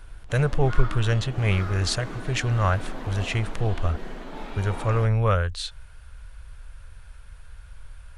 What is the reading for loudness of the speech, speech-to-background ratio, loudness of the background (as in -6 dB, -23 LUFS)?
-25.5 LUFS, 13.0 dB, -38.5 LUFS